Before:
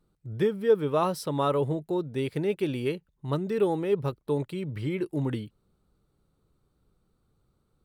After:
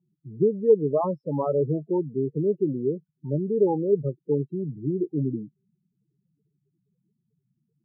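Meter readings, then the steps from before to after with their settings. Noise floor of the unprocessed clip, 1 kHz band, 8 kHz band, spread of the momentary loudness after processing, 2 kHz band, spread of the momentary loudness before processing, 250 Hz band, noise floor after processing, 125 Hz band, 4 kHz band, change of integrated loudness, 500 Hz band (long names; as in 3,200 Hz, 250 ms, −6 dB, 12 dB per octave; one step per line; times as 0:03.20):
−73 dBFS, −2.0 dB, can't be measured, 10 LU, below −40 dB, 8 LU, +3.0 dB, −79 dBFS, +2.0 dB, below −40 dB, +3.0 dB, +3.5 dB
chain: spectral peaks only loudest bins 8
elliptic band-pass filter 140–970 Hz, stop band 40 dB
level +4 dB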